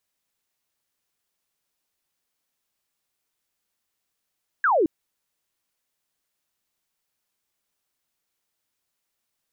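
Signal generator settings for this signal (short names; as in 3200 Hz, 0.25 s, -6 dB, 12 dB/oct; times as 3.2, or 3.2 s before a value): laser zap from 1700 Hz, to 290 Hz, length 0.22 s sine, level -16.5 dB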